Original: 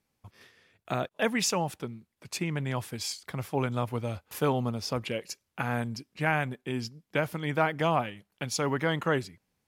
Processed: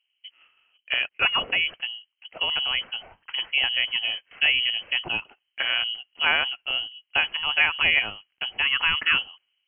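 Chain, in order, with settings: level-controlled noise filter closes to 750 Hz, open at -23 dBFS; frequency inversion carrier 3.1 kHz; trim +5 dB

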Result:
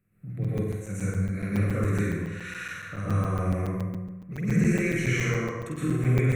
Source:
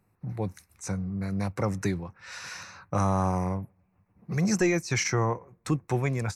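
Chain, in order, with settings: peak limiter -20.5 dBFS, peak gain reduction 4.5 dB; static phaser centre 2.1 kHz, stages 4; flutter echo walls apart 8.4 m, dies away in 0.79 s; plate-style reverb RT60 1.1 s, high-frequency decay 0.6×, pre-delay 105 ms, DRR -8.5 dB; crackling interface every 0.14 s, samples 256, zero, from 0.44 s; trim -4.5 dB

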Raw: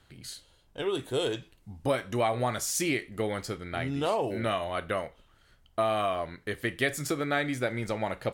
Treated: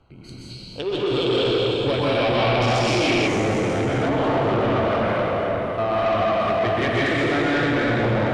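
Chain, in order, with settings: local Wiener filter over 25 samples; plate-style reverb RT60 4.4 s, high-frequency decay 0.8×, pre-delay 110 ms, DRR -9.5 dB; saturation -22 dBFS, distortion -10 dB; 0.51–3.27 s: time-frequency box 2.2–5.7 kHz +8 dB; 4.08–6.40 s: treble shelf 4.2 kHz -5.5 dB; low-pass that closes with the level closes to 550 Hz, closed at -12.5 dBFS; treble shelf 9.7 kHz -12 dB; tape noise reduction on one side only encoder only; trim +5.5 dB

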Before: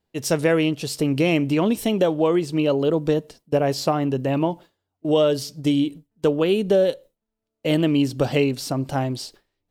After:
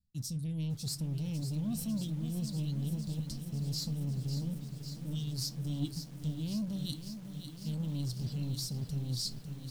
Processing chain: reverb removal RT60 0.53 s; elliptic band-stop 200–4100 Hz, stop band 60 dB; bass shelf 200 Hz +10.5 dB; peak limiter -19 dBFS, peak gain reduction 7 dB; level rider gain up to 7.5 dB; waveshaping leveller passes 1; reverse; compression 16:1, threshold -28 dBFS, peak gain reduction 15 dB; reverse; bucket-brigade echo 167 ms, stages 1024, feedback 67%, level -22 dB; on a send at -13 dB: reverberation RT60 0.25 s, pre-delay 8 ms; on the sum: bit-crushed delay 549 ms, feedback 80%, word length 8-bit, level -9 dB; trim -6 dB

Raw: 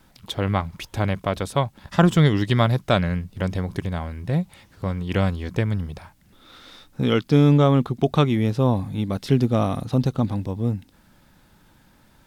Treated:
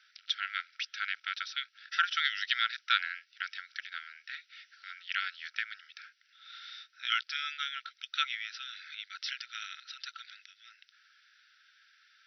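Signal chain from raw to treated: brick-wall FIR band-pass 1.3–6 kHz; 8.33–8.95 s: three bands compressed up and down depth 100%

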